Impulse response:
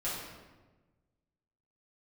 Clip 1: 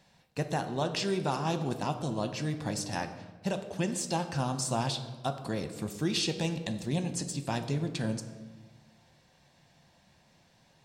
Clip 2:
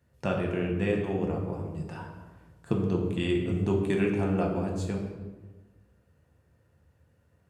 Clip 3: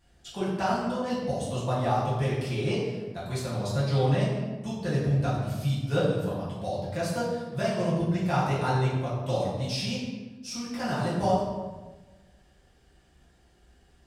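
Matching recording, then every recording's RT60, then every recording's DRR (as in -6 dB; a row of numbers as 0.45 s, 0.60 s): 3; 1.3 s, 1.2 s, 1.2 s; 7.0 dB, -0.5 dB, -10.0 dB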